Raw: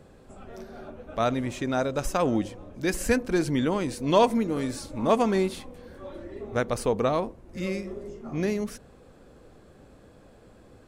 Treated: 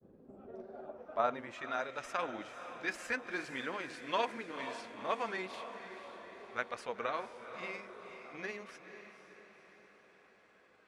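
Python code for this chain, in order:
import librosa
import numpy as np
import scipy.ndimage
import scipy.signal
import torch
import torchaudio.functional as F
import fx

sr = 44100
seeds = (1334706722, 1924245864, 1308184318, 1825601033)

y = fx.granulator(x, sr, seeds[0], grain_ms=100.0, per_s=20.0, spray_ms=10.0, spread_st=0)
y = fx.echo_diffused(y, sr, ms=499, feedback_pct=55, wet_db=-10)
y = fx.filter_sweep_bandpass(y, sr, from_hz=280.0, to_hz=1900.0, start_s=0.22, end_s=1.72, q=1.2)
y = F.gain(torch.from_numpy(y), -1.5).numpy()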